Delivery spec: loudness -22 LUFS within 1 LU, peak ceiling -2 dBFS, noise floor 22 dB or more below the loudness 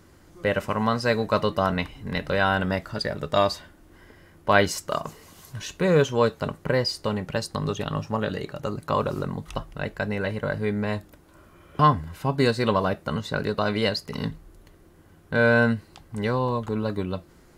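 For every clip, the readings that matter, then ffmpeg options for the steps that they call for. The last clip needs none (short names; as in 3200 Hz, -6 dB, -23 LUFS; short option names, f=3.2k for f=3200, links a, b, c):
loudness -25.5 LUFS; peak -3.5 dBFS; loudness target -22.0 LUFS
-> -af "volume=3.5dB,alimiter=limit=-2dB:level=0:latency=1"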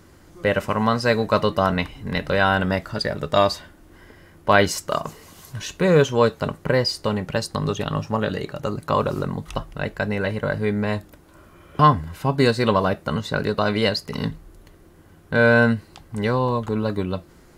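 loudness -22.0 LUFS; peak -2.0 dBFS; noise floor -50 dBFS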